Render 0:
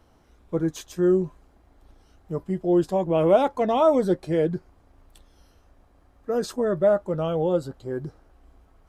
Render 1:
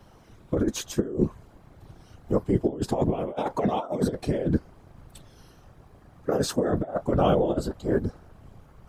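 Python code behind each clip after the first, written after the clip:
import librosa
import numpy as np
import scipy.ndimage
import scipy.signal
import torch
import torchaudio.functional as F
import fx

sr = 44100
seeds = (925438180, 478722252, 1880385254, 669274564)

y = fx.over_compress(x, sr, threshold_db=-25.0, ratio=-0.5)
y = fx.whisperise(y, sr, seeds[0])
y = y * 10.0 ** (1.5 / 20.0)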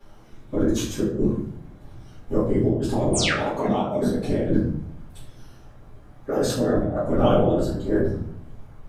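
y = fx.spec_paint(x, sr, seeds[1], shape='fall', start_s=3.13, length_s=0.2, low_hz=1100.0, high_hz=10000.0, level_db=-25.0)
y = fx.room_shoebox(y, sr, seeds[2], volume_m3=80.0, walls='mixed', distance_m=2.4)
y = y * 10.0 ** (-8.0 / 20.0)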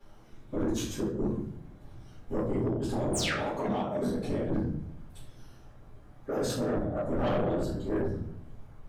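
y = 10.0 ** (-18.0 / 20.0) * np.tanh(x / 10.0 ** (-18.0 / 20.0))
y = y * 10.0 ** (-5.5 / 20.0)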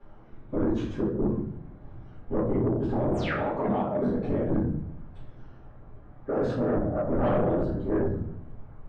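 y = scipy.signal.sosfilt(scipy.signal.butter(2, 1700.0, 'lowpass', fs=sr, output='sos'), x)
y = y * 10.0 ** (4.0 / 20.0)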